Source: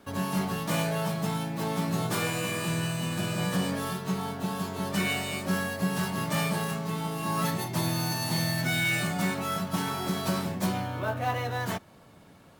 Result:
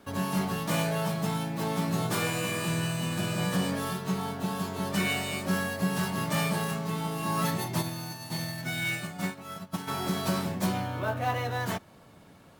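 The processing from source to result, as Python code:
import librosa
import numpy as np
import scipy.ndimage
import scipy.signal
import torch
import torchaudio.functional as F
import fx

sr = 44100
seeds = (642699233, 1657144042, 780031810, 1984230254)

y = fx.upward_expand(x, sr, threshold_db=-36.0, expansion=2.5, at=(7.81, 9.87), fade=0.02)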